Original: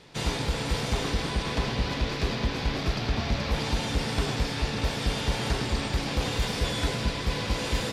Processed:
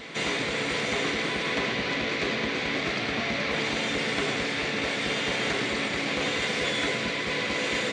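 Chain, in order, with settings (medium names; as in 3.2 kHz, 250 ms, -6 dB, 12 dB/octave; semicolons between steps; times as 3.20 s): cabinet simulation 250–7600 Hz, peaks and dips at 880 Hz -7 dB, 2.1 kHz +8 dB, 5.1 kHz -8 dB; reverse echo 1152 ms -13 dB; trim +3.5 dB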